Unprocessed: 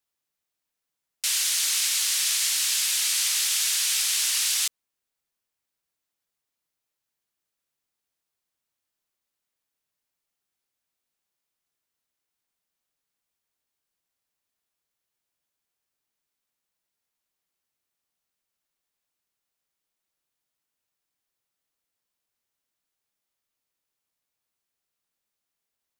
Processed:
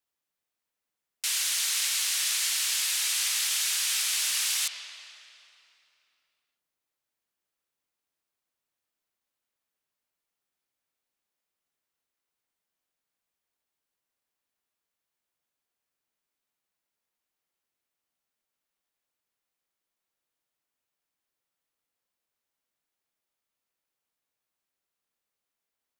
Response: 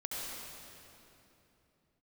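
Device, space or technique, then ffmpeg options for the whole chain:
filtered reverb send: -filter_complex "[0:a]asplit=2[link_01][link_02];[link_02]highpass=180,lowpass=3600[link_03];[1:a]atrim=start_sample=2205[link_04];[link_03][link_04]afir=irnorm=-1:irlink=0,volume=-6dB[link_05];[link_01][link_05]amix=inputs=2:normalize=0,volume=-3.5dB"

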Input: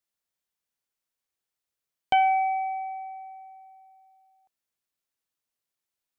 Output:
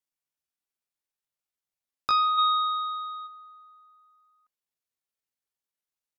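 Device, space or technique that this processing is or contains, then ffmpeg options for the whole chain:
chipmunk voice: -filter_complex "[0:a]asetrate=72056,aresample=44100,atempo=0.612027,asplit=3[link_01][link_02][link_03];[link_01]afade=type=out:start_time=2.37:duration=0.02[link_04];[link_02]equalizer=frequency=2900:width_type=o:width=1.7:gain=15,afade=type=in:start_time=2.37:duration=0.02,afade=type=out:start_time=3.26:duration=0.02[link_05];[link_03]afade=type=in:start_time=3.26:duration=0.02[link_06];[link_04][link_05][link_06]amix=inputs=3:normalize=0,volume=-2.5dB"

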